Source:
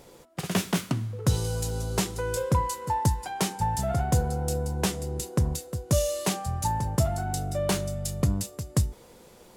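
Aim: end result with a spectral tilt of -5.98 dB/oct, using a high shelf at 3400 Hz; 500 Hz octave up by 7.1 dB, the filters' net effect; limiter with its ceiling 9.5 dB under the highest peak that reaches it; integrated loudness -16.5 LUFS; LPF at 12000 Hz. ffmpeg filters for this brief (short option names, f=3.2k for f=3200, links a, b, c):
-af "lowpass=12k,equalizer=f=500:t=o:g=8.5,highshelf=f=3.4k:g=-4,volume=11.5dB,alimiter=limit=-5dB:level=0:latency=1"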